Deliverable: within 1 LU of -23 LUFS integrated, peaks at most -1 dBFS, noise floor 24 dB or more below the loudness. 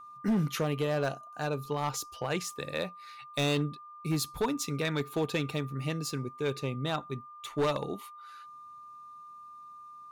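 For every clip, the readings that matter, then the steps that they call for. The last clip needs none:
clipped samples 1.3%; clipping level -23.0 dBFS; steady tone 1.2 kHz; tone level -46 dBFS; loudness -33.0 LUFS; peak level -23.0 dBFS; loudness target -23.0 LUFS
-> clip repair -23 dBFS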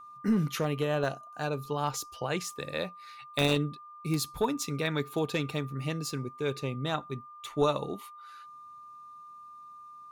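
clipped samples 0.0%; steady tone 1.2 kHz; tone level -46 dBFS
-> band-stop 1.2 kHz, Q 30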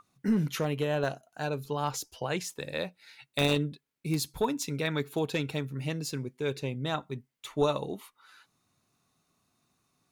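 steady tone not found; loudness -32.0 LUFS; peak level -14.0 dBFS; loudness target -23.0 LUFS
-> trim +9 dB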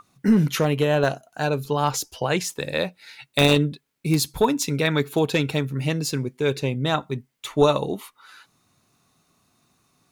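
loudness -23.0 LUFS; peak level -5.0 dBFS; noise floor -71 dBFS

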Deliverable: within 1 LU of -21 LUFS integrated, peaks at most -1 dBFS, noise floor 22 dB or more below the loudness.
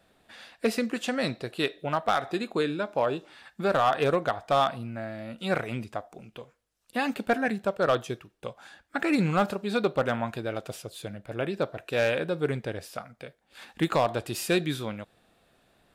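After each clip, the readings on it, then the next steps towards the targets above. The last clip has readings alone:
clipped samples 0.3%; clipping level -15.5 dBFS; loudness -28.5 LUFS; peak level -15.5 dBFS; loudness target -21.0 LUFS
-> clip repair -15.5 dBFS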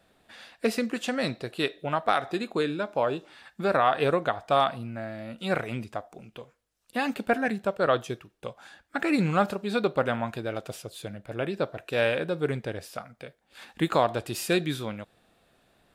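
clipped samples 0.0%; loudness -28.5 LUFS; peak level -9.0 dBFS; loudness target -21.0 LUFS
-> trim +7.5 dB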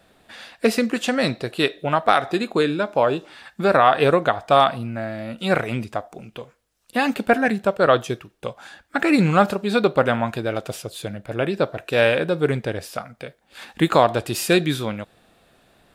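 loudness -21.0 LUFS; peak level -1.5 dBFS; noise floor -62 dBFS

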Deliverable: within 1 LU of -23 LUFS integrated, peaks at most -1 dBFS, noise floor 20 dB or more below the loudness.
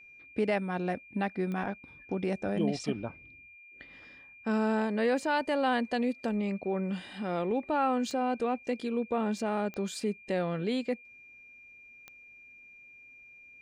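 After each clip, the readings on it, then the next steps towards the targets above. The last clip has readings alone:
clicks found 4; steady tone 2.4 kHz; tone level -51 dBFS; loudness -31.5 LUFS; peak level -18.5 dBFS; loudness target -23.0 LUFS
-> de-click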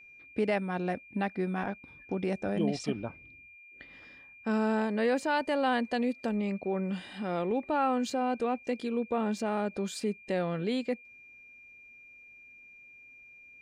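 clicks found 0; steady tone 2.4 kHz; tone level -51 dBFS
-> band-stop 2.4 kHz, Q 30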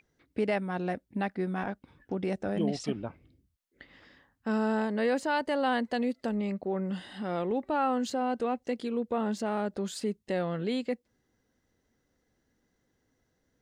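steady tone not found; loudness -31.5 LUFS; peak level -18.5 dBFS; loudness target -23.0 LUFS
-> trim +8.5 dB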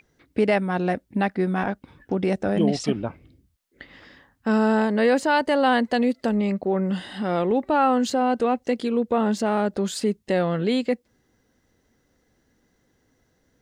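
loudness -23.0 LUFS; peak level -10.0 dBFS; noise floor -68 dBFS

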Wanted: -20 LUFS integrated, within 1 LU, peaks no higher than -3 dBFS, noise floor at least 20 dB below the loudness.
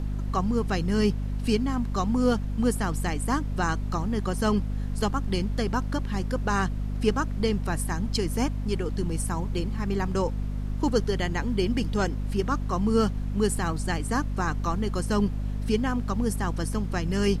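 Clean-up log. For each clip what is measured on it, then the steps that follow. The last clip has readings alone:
hum 50 Hz; highest harmonic 250 Hz; hum level -27 dBFS; noise floor -31 dBFS; noise floor target -48 dBFS; loudness -27.5 LUFS; peak level -10.5 dBFS; loudness target -20.0 LUFS
-> hum notches 50/100/150/200/250 Hz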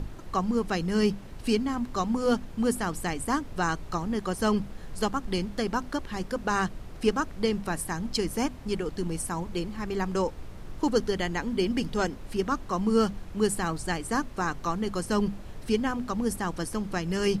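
hum not found; noise floor -42 dBFS; noise floor target -49 dBFS
-> noise print and reduce 7 dB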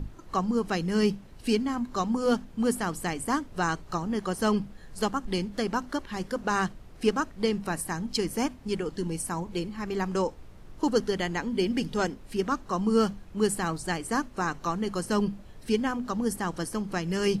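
noise floor -48 dBFS; noise floor target -50 dBFS
-> noise print and reduce 6 dB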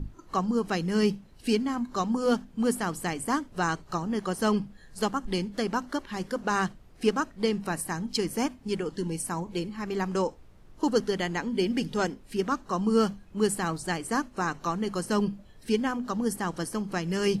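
noise floor -53 dBFS; loudness -29.5 LUFS; peak level -11.5 dBFS; loudness target -20.0 LUFS
-> trim +9.5 dB; peak limiter -3 dBFS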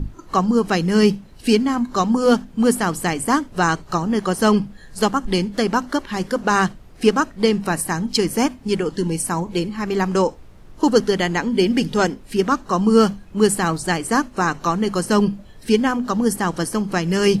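loudness -20.0 LUFS; peak level -3.0 dBFS; noise floor -43 dBFS

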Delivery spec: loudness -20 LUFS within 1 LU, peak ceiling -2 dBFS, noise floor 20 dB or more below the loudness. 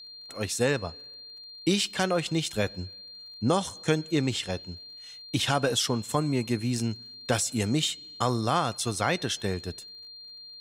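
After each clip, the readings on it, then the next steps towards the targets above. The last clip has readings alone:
tick rate 38 per s; steady tone 4.2 kHz; tone level -43 dBFS; loudness -28.0 LUFS; peak level -11.5 dBFS; loudness target -20.0 LUFS
-> de-click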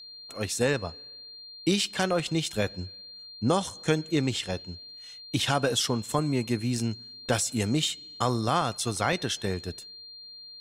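tick rate 0.28 per s; steady tone 4.2 kHz; tone level -43 dBFS
-> band-stop 4.2 kHz, Q 30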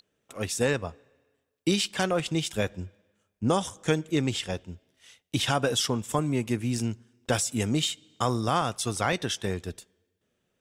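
steady tone not found; loudness -28.0 LUFS; peak level -12.0 dBFS; loudness target -20.0 LUFS
-> trim +8 dB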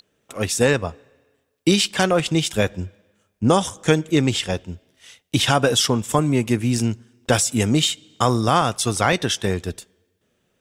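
loudness -20.0 LUFS; peak level -4.0 dBFS; noise floor -70 dBFS

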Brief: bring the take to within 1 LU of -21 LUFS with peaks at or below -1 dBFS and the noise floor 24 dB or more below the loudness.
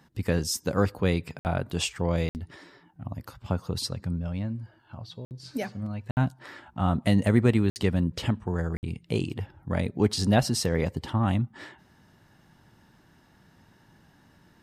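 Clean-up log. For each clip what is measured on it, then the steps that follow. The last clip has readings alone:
dropouts 6; longest dropout 59 ms; loudness -27.5 LUFS; peak level -9.0 dBFS; loudness target -21.0 LUFS
-> interpolate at 1.39/2.29/5.25/6.11/7.70/8.77 s, 59 ms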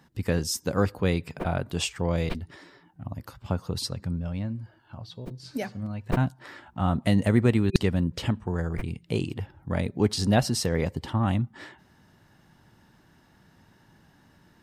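dropouts 0; loudness -27.5 LUFS; peak level -2.5 dBFS; loudness target -21.0 LUFS
-> trim +6.5 dB; peak limiter -1 dBFS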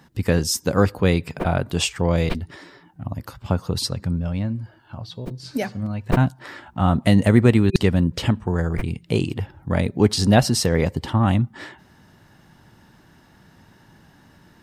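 loudness -21.0 LUFS; peak level -1.0 dBFS; noise floor -54 dBFS

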